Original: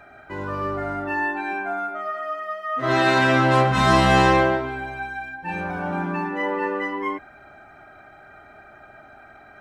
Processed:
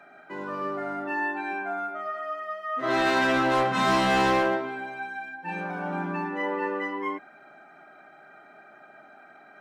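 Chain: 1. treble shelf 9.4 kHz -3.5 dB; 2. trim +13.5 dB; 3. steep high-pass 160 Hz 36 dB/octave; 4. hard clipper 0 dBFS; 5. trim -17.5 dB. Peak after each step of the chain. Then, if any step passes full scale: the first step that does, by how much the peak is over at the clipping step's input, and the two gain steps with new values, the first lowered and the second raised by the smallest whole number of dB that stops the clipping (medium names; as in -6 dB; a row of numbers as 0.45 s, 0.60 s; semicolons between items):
-4.0 dBFS, +9.5 dBFS, +9.5 dBFS, 0.0 dBFS, -17.5 dBFS; step 2, 9.5 dB; step 2 +3.5 dB, step 5 -7.5 dB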